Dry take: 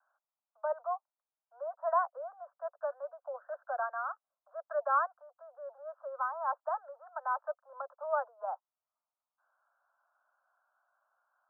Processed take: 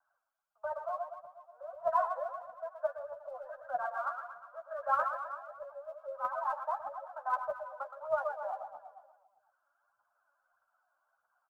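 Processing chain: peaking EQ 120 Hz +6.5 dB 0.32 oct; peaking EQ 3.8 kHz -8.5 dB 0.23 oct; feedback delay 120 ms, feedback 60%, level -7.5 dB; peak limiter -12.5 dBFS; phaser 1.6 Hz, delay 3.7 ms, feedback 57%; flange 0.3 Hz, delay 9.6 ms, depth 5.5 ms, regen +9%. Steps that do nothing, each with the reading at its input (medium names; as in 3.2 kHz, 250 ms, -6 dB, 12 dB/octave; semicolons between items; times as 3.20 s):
peaking EQ 120 Hz: input has nothing below 480 Hz; peaking EQ 3.8 kHz: input has nothing above 1.8 kHz; peak limiter -12.5 dBFS: peak at its input -18.0 dBFS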